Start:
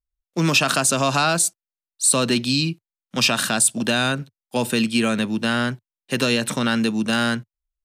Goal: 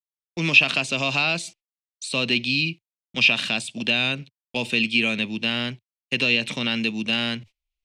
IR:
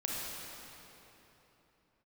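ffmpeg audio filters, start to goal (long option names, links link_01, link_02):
-filter_complex "[0:a]agate=range=-57dB:threshold=-36dB:ratio=16:detection=peak,lowpass=4400,acrossover=split=3400[link_01][link_02];[link_02]acompressor=threshold=-35dB:ratio=4:attack=1:release=60[link_03];[link_01][link_03]amix=inputs=2:normalize=0,highshelf=frequency=1900:width_type=q:width=3:gain=8,areverse,acompressor=mode=upward:threshold=-33dB:ratio=2.5,areverse,volume=-6dB"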